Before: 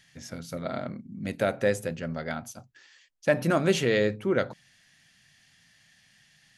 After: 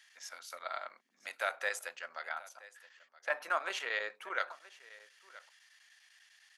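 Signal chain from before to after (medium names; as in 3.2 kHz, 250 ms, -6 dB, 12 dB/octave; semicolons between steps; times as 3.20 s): 2.23–4.15 s: treble shelf 3.3 kHz -11 dB; delay 974 ms -20 dB; square tremolo 10 Hz, depth 60%, duty 90%; ladder high-pass 810 Hz, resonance 30%; trim +4 dB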